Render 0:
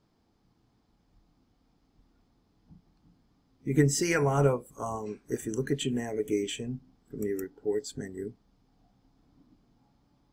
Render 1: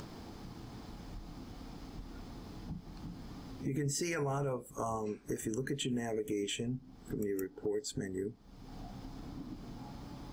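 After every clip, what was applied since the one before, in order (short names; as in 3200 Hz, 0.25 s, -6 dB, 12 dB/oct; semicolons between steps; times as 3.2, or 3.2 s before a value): in parallel at +2 dB: upward compressor, threshold -30 dBFS; on the sum: limiter -16.5 dBFS, peak gain reduction 11.5 dB; compressor 2:1, threshold -37 dBFS, peak gain reduction 9.5 dB; gain -2 dB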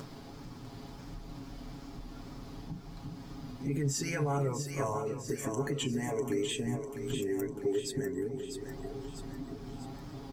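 wow and flutter 83 cents; comb 7.3 ms; split-band echo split 380 Hz, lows 0.364 s, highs 0.648 s, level -7 dB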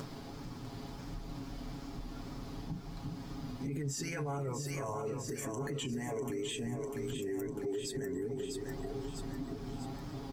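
limiter -31.5 dBFS, peak gain reduction 10 dB; gain +1.5 dB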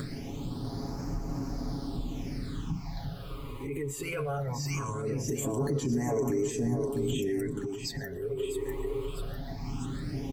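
phaser stages 8, 0.2 Hz, lowest notch 200–3400 Hz; echo 0.119 s -21 dB; gain +8 dB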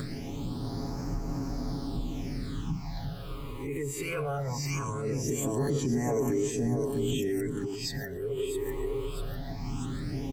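spectral swells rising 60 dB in 0.35 s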